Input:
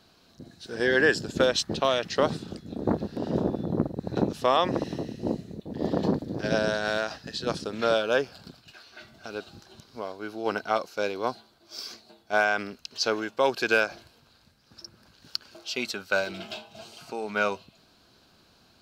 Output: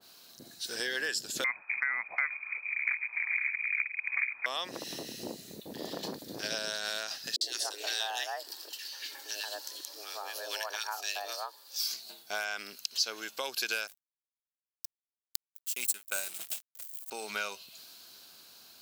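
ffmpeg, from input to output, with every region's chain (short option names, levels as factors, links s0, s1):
-filter_complex "[0:a]asettb=1/sr,asplit=3[s0][s1][s2];[s0]atrim=end=1.444[s3];[s1]atrim=start=1.44:end=4.46,asetpts=PTS-STARTPTS,afade=t=in:d=0.004:c=qsin,afade=t=out:st=3.016:d=0.004:c=qsin,equalizer=f=1800:w=0.39:g=8,lowpass=f=2200:t=q:w=0.5098,lowpass=f=2200:t=q:w=0.6013,lowpass=f=2200:t=q:w=0.9,lowpass=f=2200:t=q:w=2.563,afreqshift=-2600[s4];[s2]atrim=start=4.456[s5];[s3][s4]acrossfade=d=0.004:c1=hsin:c2=qsin[s6];[s6][s5]acrossfade=d=0.004:c1=qsin:c2=hsin,asettb=1/sr,asplit=3[s7][s8][s9];[s7]atrim=end=7.364[s10];[s8]atrim=start=7.36:end=11.8,asetpts=PTS-STARTPTS,afade=t=in:d=0.004:c=qsin,afade=t=out:st=4.436:d=0.004:c=qsin,afreqshift=200,acrossover=split=450|1600[s11][s12][s13];[s13]adelay=50[s14];[s12]adelay=180[s15];[s11][s15][s14]amix=inputs=3:normalize=0,atrim=end_sample=195804[s16];[s9]atrim=start=11.796[s17];[s10][s16]acrossfade=d=0.004:c1=hsin:c2=qsin[s18];[s18][s17]acrossfade=d=0.004:c1=qsin:c2=hsin,asettb=1/sr,asplit=3[s19][s20][s21];[s19]atrim=end=13.874[s22];[s20]atrim=start=13.87:end=17.11,asetpts=PTS-STARTPTS,afade=t=in:d=0.004:c=qsin,afade=t=out:st=3.236:d=0.004:c=qsin,highshelf=f=6500:t=q:w=3:g=10,aeval=exprs='sgn(val(0))*max(abs(val(0))-0.0126,0)':c=same[s23];[s21]atrim=start=17.106[s24];[s22][s23]acrossfade=d=0.004:c1=hsin:c2=qsin[s25];[s25][s24]acrossfade=d=0.004:c1=qsin:c2=hsin,aemphasis=mode=production:type=riaa,acompressor=threshold=0.0126:ratio=3,adynamicequalizer=threshold=0.00282:dfrequency=1700:dqfactor=0.7:tfrequency=1700:tqfactor=0.7:attack=5:release=100:ratio=0.375:range=3.5:mode=boostabove:tftype=highshelf,volume=0.891"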